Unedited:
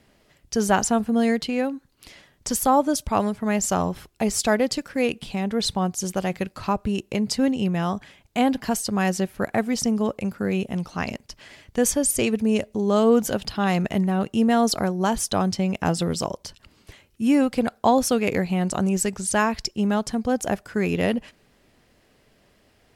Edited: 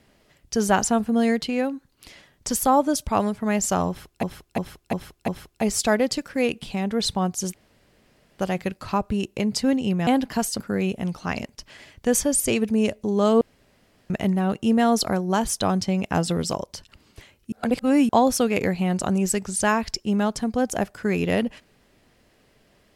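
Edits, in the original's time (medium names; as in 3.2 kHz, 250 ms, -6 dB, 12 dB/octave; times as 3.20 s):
3.88–4.23 s: loop, 5 plays
6.14 s: insert room tone 0.85 s
7.82–8.39 s: delete
8.92–10.31 s: delete
13.12–13.81 s: room tone
17.23–17.80 s: reverse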